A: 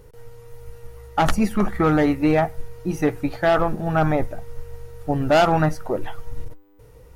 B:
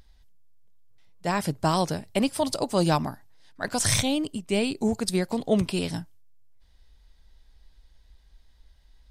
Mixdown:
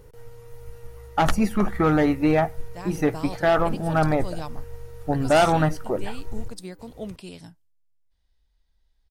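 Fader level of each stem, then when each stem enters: -1.5, -12.5 dB; 0.00, 1.50 s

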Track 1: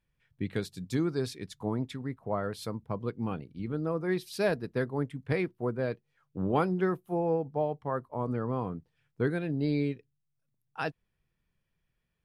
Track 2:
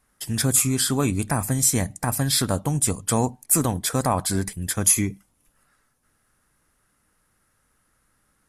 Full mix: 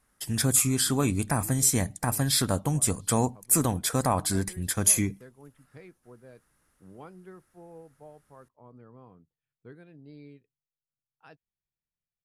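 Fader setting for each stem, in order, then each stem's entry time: -19.5, -3.0 dB; 0.45, 0.00 s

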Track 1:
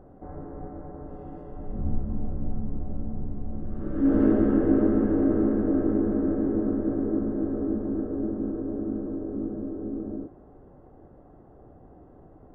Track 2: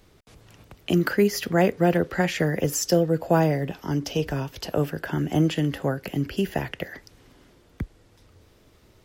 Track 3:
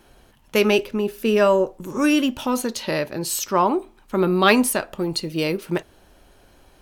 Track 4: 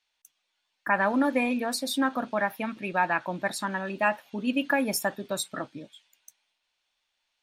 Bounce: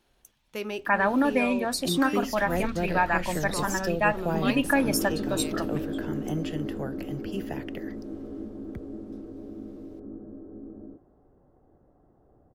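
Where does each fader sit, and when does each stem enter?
-10.0, -9.5, -16.0, +1.0 dB; 0.70, 0.95, 0.00, 0.00 s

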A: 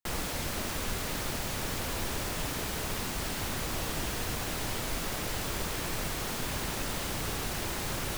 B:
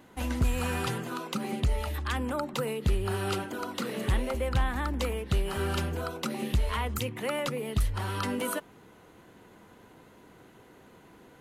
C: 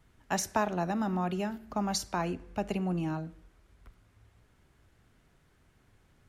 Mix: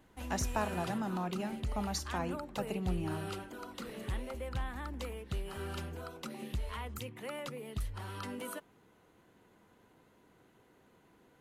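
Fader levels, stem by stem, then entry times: off, -10.5 dB, -5.5 dB; off, 0.00 s, 0.00 s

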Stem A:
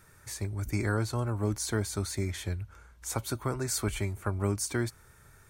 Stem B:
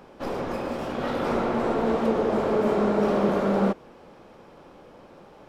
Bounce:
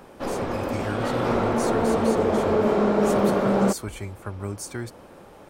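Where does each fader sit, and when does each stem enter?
-2.5, +2.0 dB; 0.00, 0.00 s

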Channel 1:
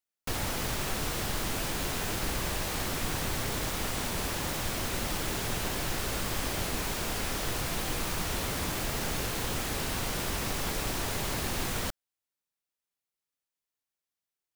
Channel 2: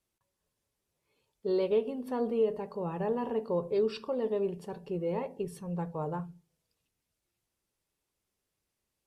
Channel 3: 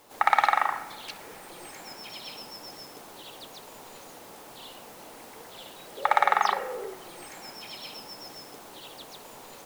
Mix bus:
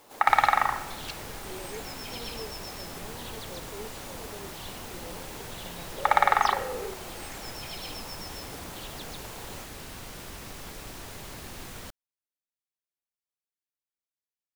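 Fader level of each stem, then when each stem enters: -9.5, -14.5, +0.5 dB; 0.00, 0.00, 0.00 s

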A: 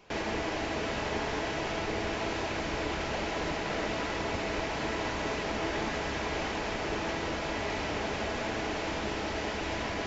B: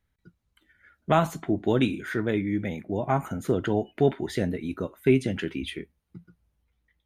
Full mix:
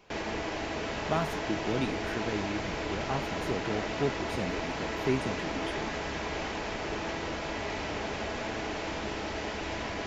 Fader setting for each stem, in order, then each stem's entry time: -1.5, -8.5 dB; 0.00, 0.00 s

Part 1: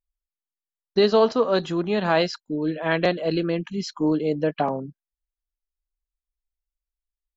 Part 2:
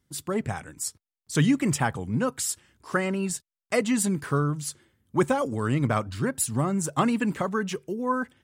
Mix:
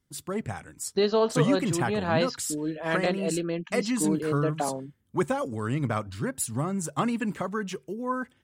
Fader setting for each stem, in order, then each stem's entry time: -5.5, -3.5 dB; 0.00, 0.00 s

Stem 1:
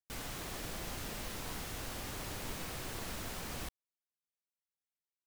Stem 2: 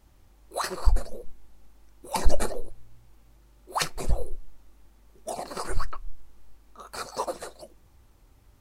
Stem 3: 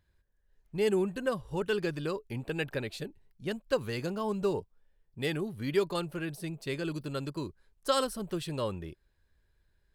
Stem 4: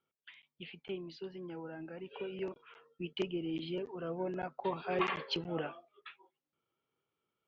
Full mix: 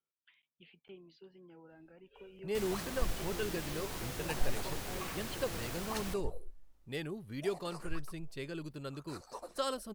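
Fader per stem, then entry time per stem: 0.0, -15.5, -7.5, -12.0 dB; 2.45, 2.15, 1.70, 0.00 s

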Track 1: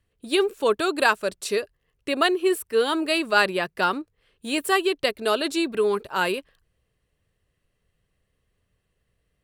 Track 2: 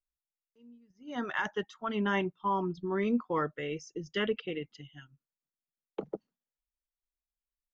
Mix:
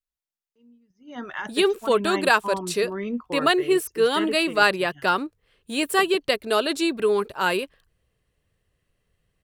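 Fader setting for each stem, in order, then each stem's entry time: +1.0, 0.0 dB; 1.25, 0.00 s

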